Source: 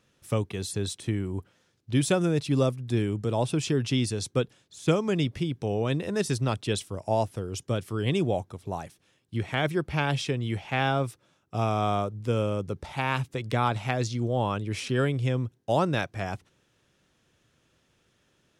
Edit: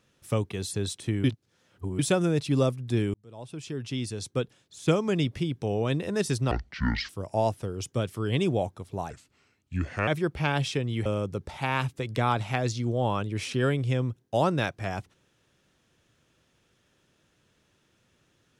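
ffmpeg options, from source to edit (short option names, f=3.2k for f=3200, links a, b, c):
-filter_complex "[0:a]asplit=9[a][b][c][d][e][f][g][h][i];[a]atrim=end=1.242[j];[b]atrim=start=1.238:end=1.992,asetpts=PTS-STARTPTS,areverse[k];[c]atrim=start=1.988:end=3.14,asetpts=PTS-STARTPTS,afade=t=out:st=1.148:d=0.004:c=hsin[l];[d]atrim=start=3.14:end=6.514,asetpts=PTS-STARTPTS,afade=t=in:d=1.69[m];[e]atrim=start=6.51:end=6.83,asetpts=PTS-STARTPTS,asetrate=24255,aresample=44100,atrim=end_sample=25658,asetpts=PTS-STARTPTS[n];[f]atrim=start=6.826:end=8.844[o];[g]atrim=start=8.84:end=9.61,asetpts=PTS-STARTPTS,asetrate=34839,aresample=44100[p];[h]atrim=start=9.606:end=10.592[q];[i]atrim=start=12.408[r];[j][k]acrossfade=d=0.004:c1=hsin:c2=hsin[s];[l][m]concat=n=2:v=0:a=1[t];[s][t]acrossfade=d=0.004:c1=hsin:c2=hsin[u];[u][n]acrossfade=d=0.004:c1=hsin:c2=hsin[v];[v][o]acrossfade=d=0.004:c1=hsin:c2=hsin[w];[w][p]acrossfade=d=0.004:c1=hsin:c2=hsin[x];[x][q]acrossfade=d=0.004:c1=hsin:c2=hsin[y];[y][r]acrossfade=d=0.004:c1=hsin:c2=hsin"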